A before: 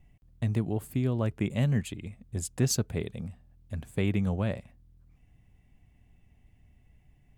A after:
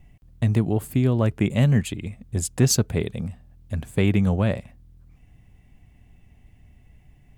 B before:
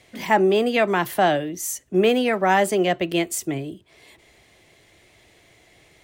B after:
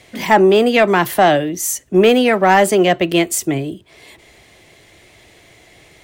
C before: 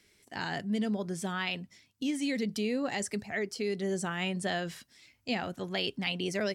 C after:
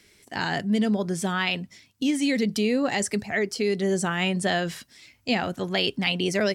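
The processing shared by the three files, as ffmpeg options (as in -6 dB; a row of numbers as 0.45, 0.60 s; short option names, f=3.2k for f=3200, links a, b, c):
-af "acontrast=78,volume=1dB"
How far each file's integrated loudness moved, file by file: +8.0, +7.0, +8.0 LU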